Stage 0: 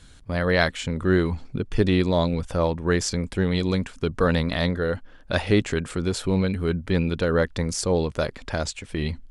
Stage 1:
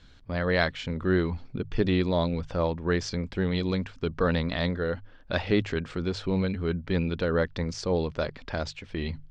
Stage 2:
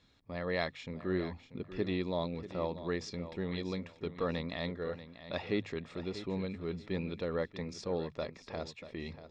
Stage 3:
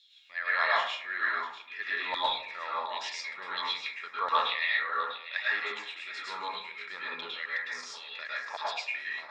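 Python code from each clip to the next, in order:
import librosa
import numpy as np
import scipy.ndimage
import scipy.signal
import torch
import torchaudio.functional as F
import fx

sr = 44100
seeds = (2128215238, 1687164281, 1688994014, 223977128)

y1 = scipy.signal.sosfilt(scipy.signal.butter(4, 5300.0, 'lowpass', fs=sr, output='sos'), x)
y1 = fx.hum_notches(y1, sr, base_hz=50, count=3)
y1 = F.gain(torch.from_numpy(y1), -4.0).numpy()
y2 = fx.notch_comb(y1, sr, f0_hz=1500.0)
y2 = fx.echo_feedback(y2, sr, ms=638, feedback_pct=23, wet_db=-13.0)
y2 = F.gain(torch.from_numpy(y2), -8.0).numpy()
y3 = fx.filter_lfo_highpass(y2, sr, shape='saw_down', hz=1.4, low_hz=880.0, high_hz=3700.0, q=5.4)
y3 = fx.rev_plate(y3, sr, seeds[0], rt60_s=0.57, hf_ratio=0.45, predelay_ms=95, drr_db=-6.5)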